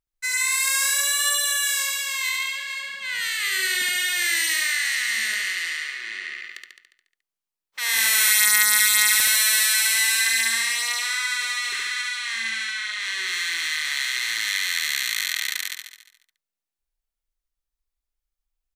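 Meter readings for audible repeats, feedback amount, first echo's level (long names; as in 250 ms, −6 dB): 7, 59%, −3.0 dB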